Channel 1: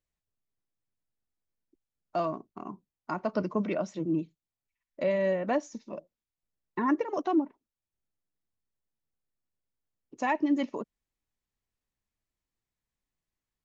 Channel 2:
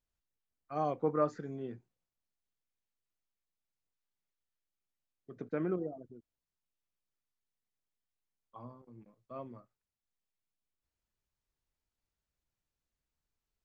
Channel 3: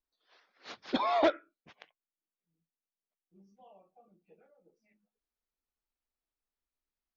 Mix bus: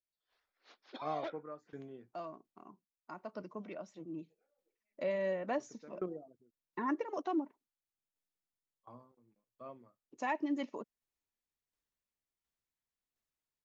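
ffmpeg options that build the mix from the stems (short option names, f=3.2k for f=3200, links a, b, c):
-filter_complex "[0:a]volume=-6.5dB,afade=t=in:st=4.14:d=0.2:silence=0.446684[a];[1:a]aeval=exprs='val(0)*pow(10,-22*if(lt(mod(1.4*n/s,1),2*abs(1.4)/1000),1-mod(1.4*n/s,1)/(2*abs(1.4)/1000),(mod(1.4*n/s,1)-2*abs(1.4)/1000)/(1-2*abs(1.4)/1000))/20)':c=same,adelay=300,volume=-1dB[b];[2:a]highpass=f=240:w=0.5412,highpass=f=240:w=1.3066,volume=-15.5dB[c];[a][b][c]amix=inputs=3:normalize=0,lowshelf=f=170:g=-9"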